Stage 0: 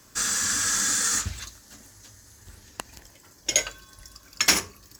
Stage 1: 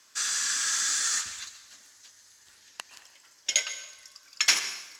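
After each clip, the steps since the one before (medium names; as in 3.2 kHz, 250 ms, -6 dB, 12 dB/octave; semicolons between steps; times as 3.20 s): band-pass filter 3.4 kHz, Q 0.66; plate-style reverb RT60 1 s, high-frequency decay 0.9×, pre-delay 105 ms, DRR 11 dB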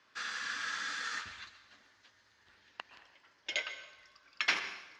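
distance through air 330 m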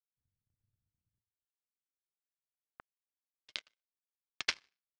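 power-law waveshaper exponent 3; low-pass sweep 110 Hz -> 4.8 kHz, 1.43–3.45 s; trim +2 dB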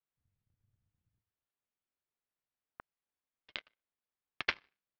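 distance through air 350 m; trim +6 dB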